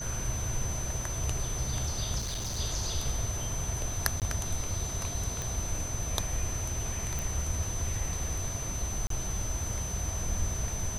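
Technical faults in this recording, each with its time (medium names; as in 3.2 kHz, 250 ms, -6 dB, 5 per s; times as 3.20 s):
whine 6.1 kHz -37 dBFS
2.18–2.60 s: clipped -30.5 dBFS
4.20–4.22 s: dropout 18 ms
5.42 s: pop
7.19 s: pop
9.07–9.10 s: dropout 33 ms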